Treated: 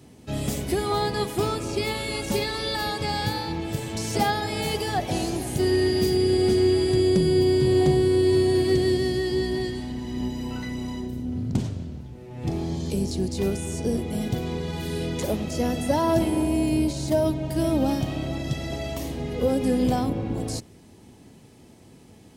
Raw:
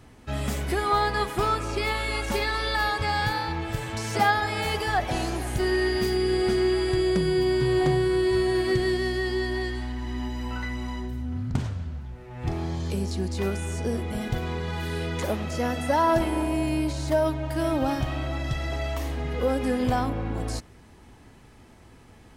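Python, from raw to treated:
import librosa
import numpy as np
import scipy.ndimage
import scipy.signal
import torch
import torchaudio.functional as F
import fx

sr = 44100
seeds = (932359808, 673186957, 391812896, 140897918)

y = fx.octave_divider(x, sr, octaves=2, level_db=0.0)
y = scipy.signal.sosfilt(scipy.signal.butter(2, 130.0, 'highpass', fs=sr, output='sos'), y)
y = fx.peak_eq(y, sr, hz=1400.0, db=-12.5, octaves=1.8)
y = y * 10.0 ** (5.0 / 20.0)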